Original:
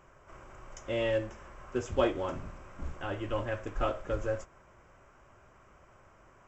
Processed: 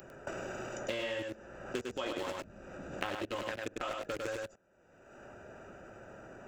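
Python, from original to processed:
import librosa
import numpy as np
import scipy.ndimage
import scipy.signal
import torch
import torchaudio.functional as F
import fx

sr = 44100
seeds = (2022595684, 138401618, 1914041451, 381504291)

y = fx.wiener(x, sr, points=41)
y = fx.tilt_eq(y, sr, slope=4.5)
y = fx.level_steps(y, sr, step_db=23)
y = fx.peak_eq(y, sr, hz=210.0, db=4.0, octaves=0.66)
y = y + 10.0 ** (-3.5 / 20.0) * np.pad(y, (int(101 * sr / 1000.0), 0))[:len(y)]
y = fx.band_squash(y, sr, depth_pct=100)
y = y * librosa.db_to_amplitude(9.0)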